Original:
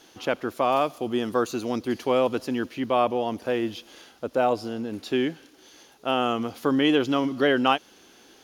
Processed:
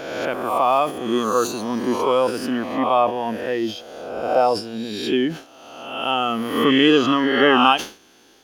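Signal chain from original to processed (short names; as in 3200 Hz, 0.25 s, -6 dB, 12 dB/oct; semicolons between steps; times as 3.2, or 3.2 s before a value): spectral swells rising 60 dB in 1.48 s; spectral noise reduction 7 dB; sustainer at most 150 dB/s; gain +4.5 dB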